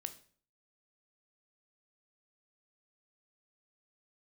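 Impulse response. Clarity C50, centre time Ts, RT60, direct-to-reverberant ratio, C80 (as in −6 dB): 14.5 dB, 6 ms, 0.45 s, 9.0 dB, 18.5 dB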